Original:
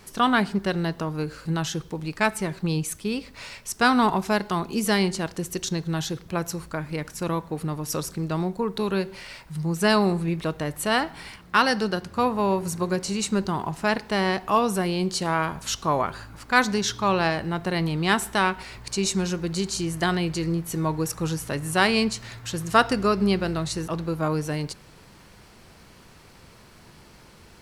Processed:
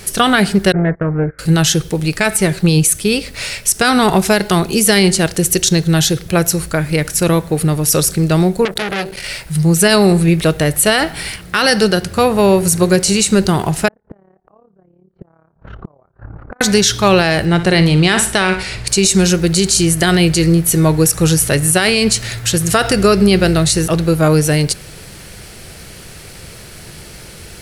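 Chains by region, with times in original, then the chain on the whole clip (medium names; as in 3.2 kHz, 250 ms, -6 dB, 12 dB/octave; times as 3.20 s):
0.72–1.39 s: steep low-pass 2.2 kHz 96 dB/octave + gate -35 dBFS, range -20 dB + transformer saturation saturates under 390 Hz
8.65–9.24 s: band-stop 250 Hz, Q 6.2 + transformer saturation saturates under 2 kHz
13.88–16.61 s: low-pass 1.2 kHz 24 dB/octave + AM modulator 35 Hz, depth 65% + inverted gate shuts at -27 dBFS, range -37 dB
17.45–18.87 s: low-pass 7.8 kHz + flutter echo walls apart 10.1 m, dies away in 0.29 s
whole clip: fifteen-band graphic EQ 250 Hz -7 dB, 1 kHz -11 dB, 10 kHz +8 dB; loudness maximiser +17.5 dB; trim -1 dB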